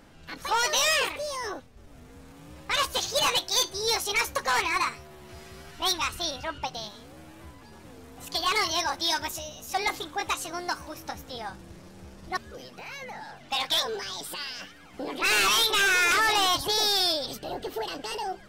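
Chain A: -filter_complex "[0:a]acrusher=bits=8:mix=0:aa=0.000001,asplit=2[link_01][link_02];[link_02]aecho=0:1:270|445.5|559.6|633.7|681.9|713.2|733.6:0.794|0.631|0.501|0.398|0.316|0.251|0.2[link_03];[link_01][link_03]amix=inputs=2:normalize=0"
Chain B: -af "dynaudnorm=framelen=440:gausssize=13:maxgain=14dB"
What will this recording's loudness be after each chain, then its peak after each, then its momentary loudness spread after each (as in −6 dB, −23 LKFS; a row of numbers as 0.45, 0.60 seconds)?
−22.5, −14.5 LKFS; −7.0, −4.5 dBFS; 18, 22 LU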